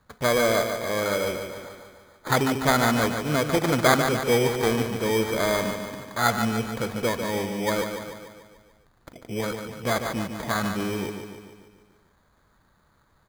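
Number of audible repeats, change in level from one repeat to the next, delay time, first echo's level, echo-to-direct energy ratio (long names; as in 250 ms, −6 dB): 6, −5.0 dB, 146 ms, −7.0 dB, −5.5 dB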